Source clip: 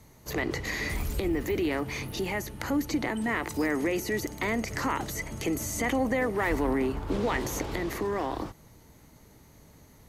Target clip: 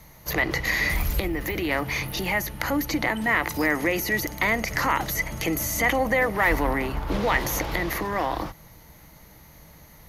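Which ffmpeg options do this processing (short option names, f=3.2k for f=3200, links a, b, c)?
-filter_complex "[0:a]equalizer=f=100:t=o:w=0.33:g=-10,equalizer=f=250:t=o:w=0.33:g=-11,equalizer=f=400:t=o:w=0.33:g=-10,equalizer=f=2k:t=o:w=0.33:g=3,equalizer=f=8k:t=o:w=0.33:g=-10,equalizer=f=12.5k:t=o:w=0.33:g=6,asettb=1/sr,asplit=3[a][b][c];[a]atrim=end=1.234[d];[b]atrim=start=1.23:end=1.69,asetpts=PTS-STARTPTS,afade=t=in:d=0.004:c=qsin,afade=t=out:st=0.456:d=0.004:c=qsin,acompressor=threshold=-30dB:ratio=6[e];[c]atrim=start=1.686[f];[d][e]acrossfade=d=0.004:c1=hsin:c2=qsin[g];[g][f]acrossfade=d=0.004:c1=qsin:c2=hsin,volume=7dB"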